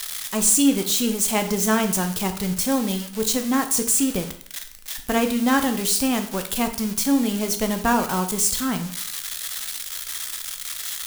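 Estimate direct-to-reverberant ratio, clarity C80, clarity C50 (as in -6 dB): 6.0 dB, 14.5 dB, 11.0 dB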